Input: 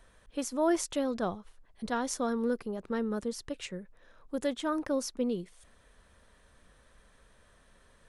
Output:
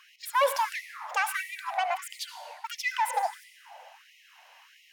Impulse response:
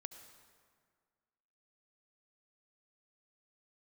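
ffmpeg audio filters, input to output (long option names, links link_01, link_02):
-filter_complex "[0:a]asetrate=72324,aresample=44100,asplit=2[link_01][link_02];[link_02]highpass=frequency=720:poles=1,volume=15dB,asoftclip=type=tanh:threshold=-16dB[link_03];[link_01][link_03]amix=inputs=2:normalize=0,lowpass=frequency=3200:poles=1,volume=-6dB[link_04];[1:a]atrim=start_sample=2205[link_05];[link_04][link_05]afir=irnorm=-1:irlink=0,afftfilt=real='re*gte(b*sr/1024,470*pow(1900/470,0.5+0.5*sin(2*PI*1.5*pts/sr)))':imag='im*gte(b*sr/1024,470*pow(1900/470,0.5+0.5*sin(2*PI*1.5*pts/sr)))':win_size=1024:overlap=0.75,volume=7dB"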